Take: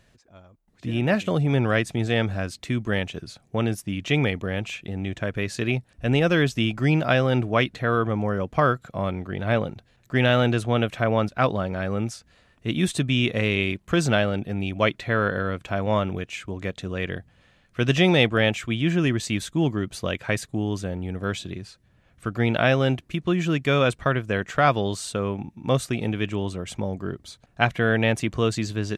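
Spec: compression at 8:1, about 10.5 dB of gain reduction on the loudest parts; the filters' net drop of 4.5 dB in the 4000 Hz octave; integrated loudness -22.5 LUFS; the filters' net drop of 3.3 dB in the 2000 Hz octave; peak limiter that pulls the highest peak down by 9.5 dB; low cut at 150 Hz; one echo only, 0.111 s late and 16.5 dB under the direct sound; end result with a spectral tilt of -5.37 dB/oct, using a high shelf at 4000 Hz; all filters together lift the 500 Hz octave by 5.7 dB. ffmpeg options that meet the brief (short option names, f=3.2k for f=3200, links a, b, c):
-af "highpass=150,equalizer=f=500:t=o:g=7,equalizer=f=2k:t=o:g=-4.5,highshelf=f=4k:g=7.5,equalizer=f=4k:t=o:g=-8.5,acompressor=threshold=-23dB:ratio=8,alimiter=limit=-18dB:level=0:latency=1,aecho=1:1:111:0.15,volume=8dB"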